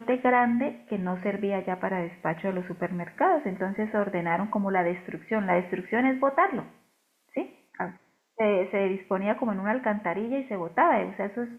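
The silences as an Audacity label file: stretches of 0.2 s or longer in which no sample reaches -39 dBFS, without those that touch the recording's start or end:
6.670000	7.350000	silence
7.470000	7.750000	silence
7.910000	8.390000	silence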